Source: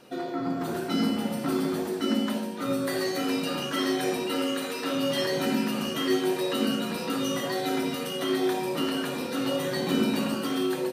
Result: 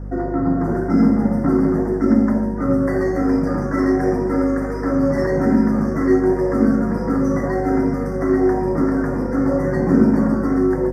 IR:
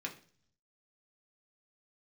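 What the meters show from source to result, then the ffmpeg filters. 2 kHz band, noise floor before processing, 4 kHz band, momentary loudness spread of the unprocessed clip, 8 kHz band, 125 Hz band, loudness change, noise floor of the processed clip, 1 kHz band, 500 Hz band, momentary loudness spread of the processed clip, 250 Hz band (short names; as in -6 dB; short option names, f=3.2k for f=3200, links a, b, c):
+3.0 dB, -33 dBFS, under -15 dB, 4 LU, n/a, +15.0 dB, +9.5 dB, -24 dBFS, +6.5 dB, +9.0 dB, 4 LU, +11.5 dB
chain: -filter_complex "[0:a]aemphasis=mode=reproduction:type=50kf,asplit=2[a][b];[b]adynamicsmooth=sensitivity=5.5:basefreq=3.9k,volume=2.5dB[c];[a][c]amix=inputs=2:normalize=0,lowshelf=f=260:g=10,aeval=exprs='val(0)+0.0447*(sin(2*PI*50*n/s)+sin(2*PI*2*50*n/s)/2+sin(2*PI*3*50*n/s)/3+sin(2*PI*4*50*n/s)/4+sin(2*PI*5*50*n/s)/5)':c=same,asuperstop=centerf=3200:order=12:qfactor=1.1,volume=-1dB"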